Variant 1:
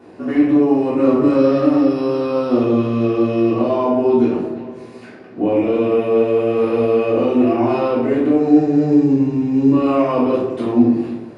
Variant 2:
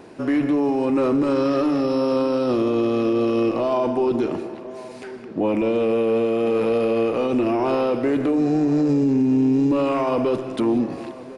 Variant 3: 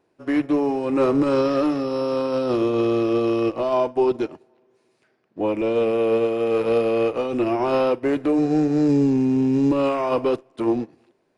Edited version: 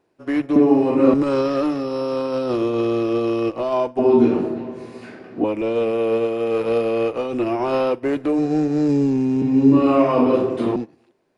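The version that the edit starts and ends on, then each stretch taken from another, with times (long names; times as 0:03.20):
3
0:00.56–0:01.14: punch in from 1
0:03.99–0:05.44: punch in from 1
0:09.42–0:10.76: punch in from 1
not used: 2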